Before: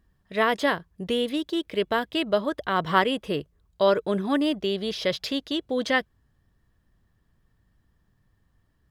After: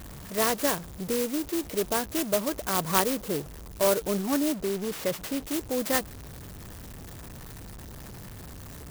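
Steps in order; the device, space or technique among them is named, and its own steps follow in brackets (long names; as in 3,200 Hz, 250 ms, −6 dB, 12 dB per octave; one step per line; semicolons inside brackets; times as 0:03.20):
high-pass filter 49 Hz 6 dB per octave
early CD player with a faulty converter (converter with a step at zero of −33 dBFS; converter with an unsteady clock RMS 0.11 ms)
0:04.54–0:05.45: high-shelf EQ 4,600 Hz −5.5 dB
level −3.5 dB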